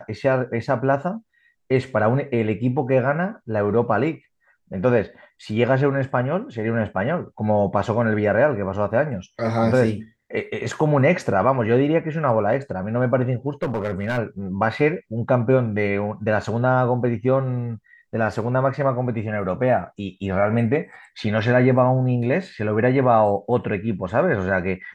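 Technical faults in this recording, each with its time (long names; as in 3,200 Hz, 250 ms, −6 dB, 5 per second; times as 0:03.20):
0:13.63–0:14.19: clipping −18.5 dBFS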